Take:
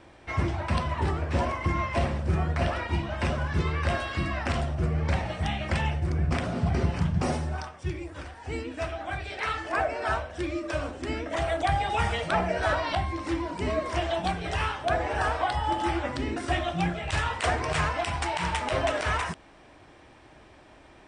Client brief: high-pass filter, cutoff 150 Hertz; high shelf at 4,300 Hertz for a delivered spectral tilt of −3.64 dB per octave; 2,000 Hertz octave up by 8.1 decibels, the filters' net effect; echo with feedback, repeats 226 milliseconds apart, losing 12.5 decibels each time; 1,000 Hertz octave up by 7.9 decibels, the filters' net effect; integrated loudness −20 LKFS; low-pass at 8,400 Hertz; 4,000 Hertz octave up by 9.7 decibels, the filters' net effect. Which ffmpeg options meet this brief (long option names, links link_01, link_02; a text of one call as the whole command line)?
ffmpeg -i in.wav -af "highpass=150,lowpass=8400,equalizer=frequency=1000:width_type=o:gain=8.5,equalizer=frequency=2000:width_type=o:gain=4.5,equalizer=frequency=4000:width_type=o:gain=8.5,highshelf=frequency=4300:gain=4.5,aecho=1:1:226|452|678:0.237|0.0569|0.0137,volume=3dB" out.wav